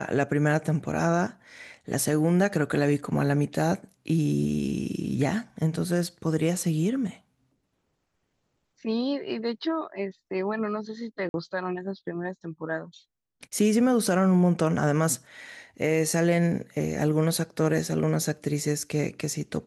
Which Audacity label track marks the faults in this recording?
11.290000	11.340000	gap 51 ms

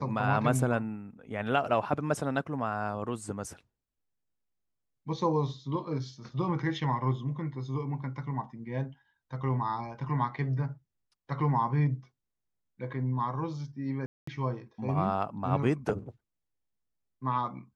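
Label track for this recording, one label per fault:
14.060000	14.270000	gap 0.214 s

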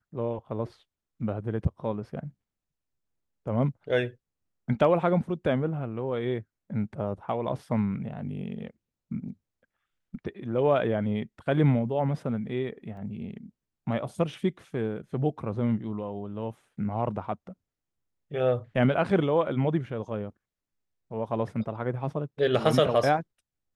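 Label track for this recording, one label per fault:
12.970000	12.970000	gap 2.2 ms

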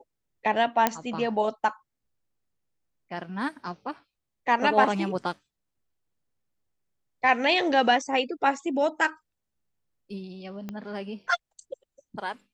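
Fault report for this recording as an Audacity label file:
0.870000	0.870000	pop -6 dBFS
10.690000	10.690000	pop -22 dBFS

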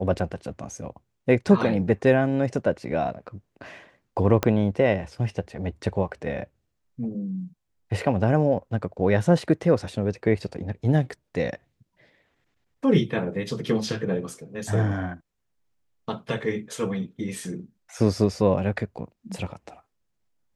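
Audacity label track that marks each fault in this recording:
4.430000	4.430000	pop -7 dBFS

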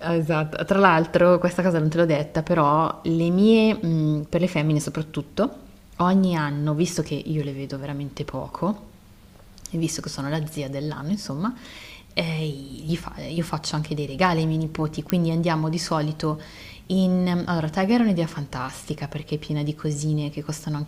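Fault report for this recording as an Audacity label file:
15.100000	15.100000	pop -7 dBFS

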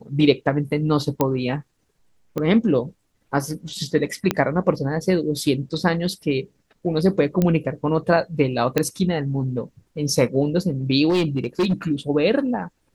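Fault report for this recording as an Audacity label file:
1.210000	1.210000	pop -6 dBFS
2.380000	2.380000	pop -14 dBFS
4.310000	4.310000	pop -5 dBFS
7.420000	7.420000	pop -8 dBFS
8.780000	8.780000	pop -5 dBFS
11.090000	11.740000	clipped -15.5 dBFS

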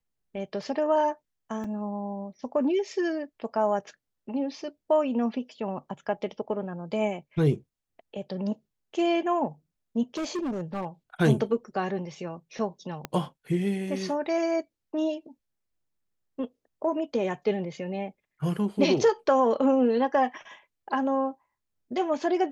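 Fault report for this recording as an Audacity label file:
1.640000	1.640000	gap 3 ms
10.170000	10.850000	clipped -27 dBFS
13.050000	13.050000	pop -17 dBFS

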